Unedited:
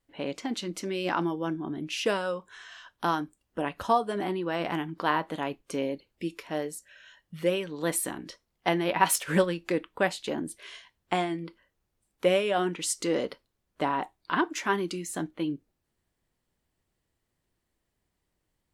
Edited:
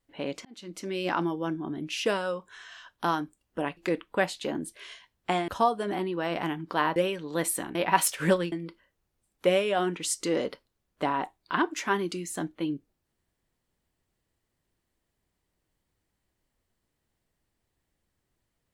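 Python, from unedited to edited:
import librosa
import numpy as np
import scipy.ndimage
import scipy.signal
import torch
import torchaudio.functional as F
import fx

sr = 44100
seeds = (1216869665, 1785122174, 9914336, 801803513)

y = fx.edit(x, sr, fx.fade_in_span(start_s=0.45, length_s=0.52),
    fx.cut(start_s=5.25, length_s=2.19),
    fx.cut(start_s=8.23, length_s=0.6),
    fx.move(start_s=9.6, length_s=1.71, to_s=3.77), tone=tone)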